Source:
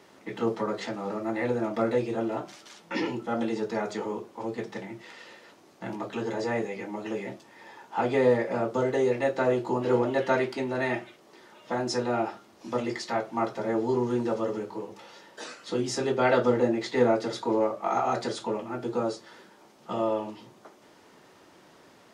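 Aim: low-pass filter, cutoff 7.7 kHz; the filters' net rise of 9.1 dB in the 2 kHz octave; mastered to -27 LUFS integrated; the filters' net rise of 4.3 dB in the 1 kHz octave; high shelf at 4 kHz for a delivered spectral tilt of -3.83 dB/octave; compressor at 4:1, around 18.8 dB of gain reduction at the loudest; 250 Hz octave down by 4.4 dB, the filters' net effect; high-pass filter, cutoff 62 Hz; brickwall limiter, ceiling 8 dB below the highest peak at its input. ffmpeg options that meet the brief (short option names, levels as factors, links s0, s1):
-af "highpass=62,lowpass=7700,equalizer=f=250:t=o:g=-6.5,equalizer=f=1000:t=o:g=3.5,equalizer=f=2000:t=o:g=9,highshelf=f=4000:g=4.5,acompressor=threshold=0.01:ratio=4,volume=6.31,alimiter=limit=0.158:level=0:latency=1"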